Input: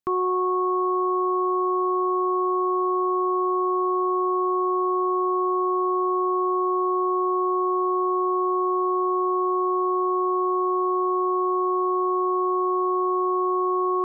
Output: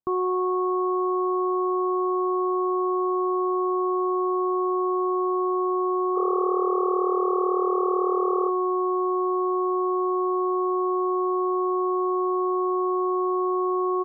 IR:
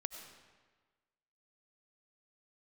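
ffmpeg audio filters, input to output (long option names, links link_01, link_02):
-filter_complex "[0:a]lowpass=frequency=1100:width=0.5412,lowpass=frequency=1100:width=1.3066,asplit=3[link_01][link_02][link_03];[link_01]afade=type=out:start_time=6.15:duration=0.02[link_04];[link_02]asplit=8[link_05][link_06][link_07][link_08][link_09][link_10][link_11][link_12];[link_06]adelay=179,afreqshift=38,volume=-7dB[link_13];[link_07]adelay=358,afreqshift=76,volume=-11.7dB[link_14];[link_08]adelay=537,afreqshift=114,volume=-16.5dB[link_15];[link_09]adelay=716,afreqshift=152,volume=-21.2dB[link_16];[link_10]adelay=895,afreqshift=190,volume=-25.9dB[link_17];[link_11]adelay=1074,afreqshift=228,volume=-30.7dB[link_18];[link_12]adelay=1253,afreqshift=266,volume=-35.4dB[link_19];[link_05][link_13][link_14][link_15][link_16][link_17][link_18][link_19]amix=inputs=8:normalize=0,afade=type=in:start_time=6.15:duration=0.02,afade=type=out:start_time=8.48:duration=0.02[link_20];[link_03]afade=type=in:start_time=8.48:duration=0.02[link_21];[link_04][link_20][link_21]amix=inputs=3:normalize=0"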